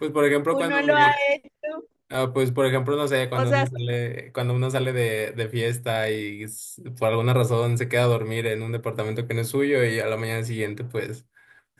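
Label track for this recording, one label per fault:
2.140000	2.140000	gap 2.7 ms

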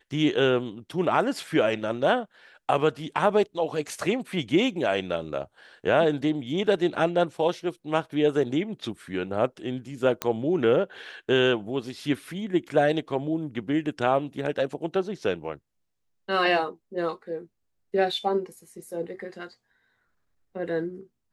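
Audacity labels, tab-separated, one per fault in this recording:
10.220000	10.220000	pop -10 dBFS

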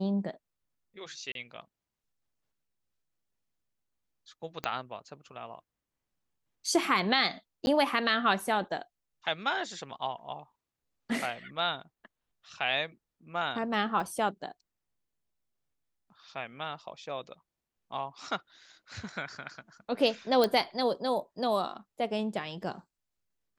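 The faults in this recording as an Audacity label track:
1.320000	1.350000	gap 32 ms
4.640000	4.640000	pop -17 dBFS
7.660000	7.670000	gap
14.000000	14.000000	gap 3.4 ms
20.440000	20.440000	pop -13 dBFS

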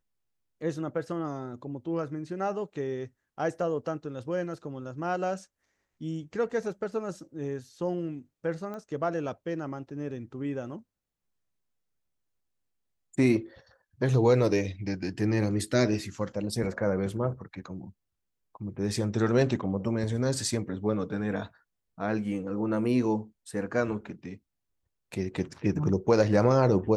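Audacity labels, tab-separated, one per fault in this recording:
8.740000	8.740000	pop -27 dBFS

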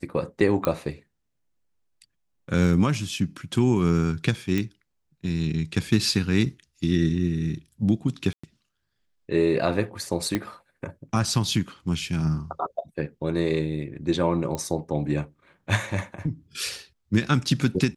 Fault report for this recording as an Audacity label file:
0.650000	0.650000	pop -11 dBFS
4.580000	4.580000	pop -13 dBFS
8.330000	8.440000	gap 0.105 s
10.350000	10.350000	pop -11 dBFS
14.550000	14.550000	pop -16 dBFS

